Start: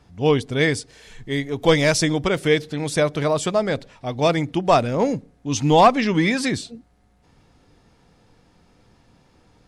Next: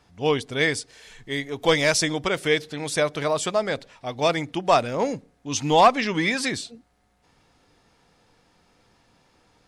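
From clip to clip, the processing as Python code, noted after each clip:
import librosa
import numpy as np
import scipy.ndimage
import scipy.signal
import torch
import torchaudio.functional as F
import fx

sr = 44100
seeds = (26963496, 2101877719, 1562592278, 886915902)

y = fx.low_shelf(x, sr, hz=390.0, db=-9.5)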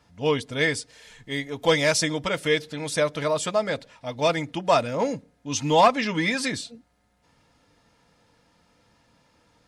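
y = fx.notch_comb(x, sr, f0_hz=380.0)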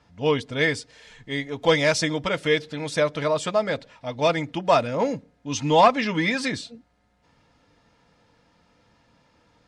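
y = fx.air_absorb(x, sr, metres=66.0)
y = F.gain(torch.from_numpy(y), 1.5).numpy()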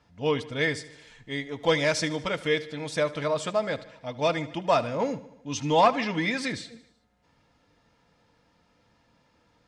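y = fx.echo_feedback(x, sr, ms=76, feedback_pct=60, wet_db=-18)
y = F.gain(torch.from_numpy(y), -4.0).numpy()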